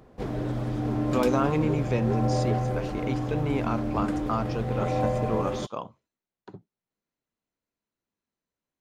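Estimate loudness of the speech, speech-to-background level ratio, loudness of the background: -31.0 LUFS, -2.0 dB, -29.0 LUFS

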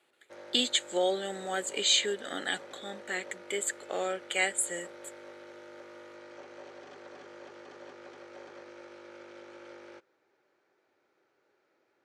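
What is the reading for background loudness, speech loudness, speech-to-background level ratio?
-48.5 LUFS, -30.5 LUFS, 18.0 dB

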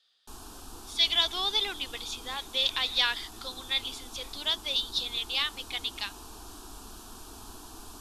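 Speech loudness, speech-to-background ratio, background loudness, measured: -29.0 LUFS, 17.0 dB, -46.0 LUFS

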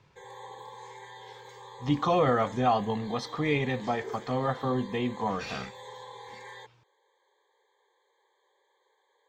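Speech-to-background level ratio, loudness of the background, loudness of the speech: 17.5 dB, -46.5 LUFS, -29.0 LUFS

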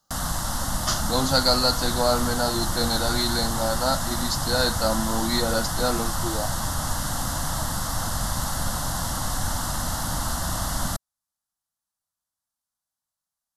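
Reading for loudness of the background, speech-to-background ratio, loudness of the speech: -27.5 LUFS, 2.5 dB, -25.0 LUFS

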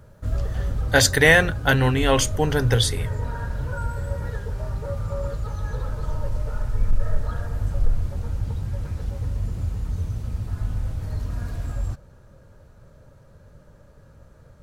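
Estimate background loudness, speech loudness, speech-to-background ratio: -29.5 LUFS, -19.0 LUFS, 10.5 dB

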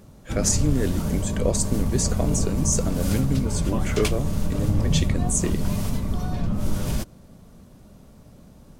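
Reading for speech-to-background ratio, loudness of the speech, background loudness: 0.0 dB, -26.5 LUFS, -26.5 LUFS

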